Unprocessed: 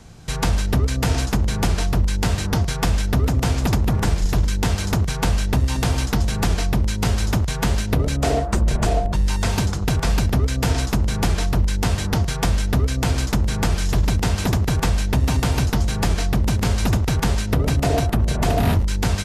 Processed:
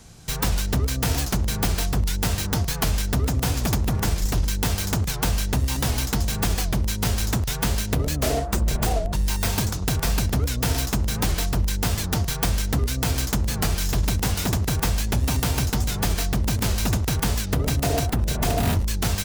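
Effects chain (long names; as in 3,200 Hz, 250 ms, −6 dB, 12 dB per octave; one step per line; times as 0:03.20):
stylus tracing distortion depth 0.23 ms
high-shelf EQ 4,400 Hz +10.5 dB
wow of a warped record 78 rpm, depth 160 cents
level −4 dB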